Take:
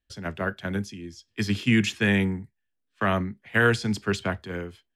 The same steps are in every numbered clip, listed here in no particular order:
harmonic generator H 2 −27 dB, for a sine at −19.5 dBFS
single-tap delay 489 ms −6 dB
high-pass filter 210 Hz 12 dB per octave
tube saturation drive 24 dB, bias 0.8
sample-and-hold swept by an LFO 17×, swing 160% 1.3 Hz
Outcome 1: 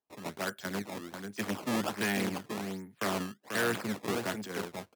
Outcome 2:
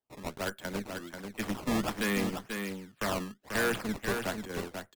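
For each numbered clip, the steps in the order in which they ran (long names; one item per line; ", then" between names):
harmonic generator, then single-tap delay, then sample-and-hold swept by an LFO, then tube saturation, then high-pass filter
high-pass filter, then harmonic generator, then sample-and-hold swept by an LFO, then tube saturation, then single-tap delay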